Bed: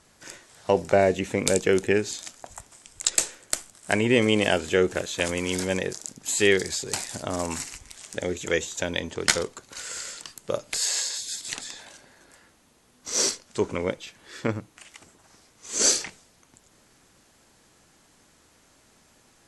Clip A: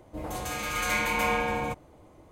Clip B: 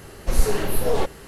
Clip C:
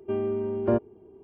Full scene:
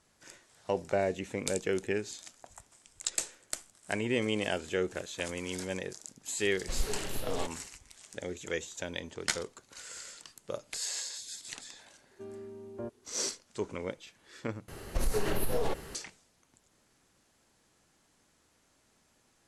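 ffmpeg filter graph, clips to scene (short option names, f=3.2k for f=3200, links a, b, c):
-filter_complex "[2:a]asplit=2[a][b];[0:a]volume=-10dB[c];[a]equalizer=f=3.3k:t=o:w=1.4:g=9[d];[b]acompressor=threshold=-20dB:ratio=6:attack=3.2:release=140:knee=1:detection=peak[e];[c]asplit=2[f][g];[f]atrim=end=14.684[h];[e]atrim=end=1.27,asetpts=PTS-STARTPTS,volume=-3.5dB[i];[g]atrim=start=15.946[j];[d]atrim=end=1.27,asetpts=PTS-STARTPTS,volume=-14.5dB,afade=t=in:d=0.004:c=hsin,afade=t=out:st=1.266:d=0.004:c=hsin,adelay=6410[k];[3:a]atrim=end=1.23,asetpts=PTS-STARTPTS,volume=-17dB,afade=t=in:d=0.004:c=hsin,afade=t=out:st=1.226:d=0.004:c=hsin,adelay=12110[l];[h][i]acrossfade=d=0.004:c1=hsin:c2=hsin[m];[m][j]acrossfade=d=0.004:c1=hsin:c2=hsin[n];[n][k][l]amix=inputs=3:normalize=0"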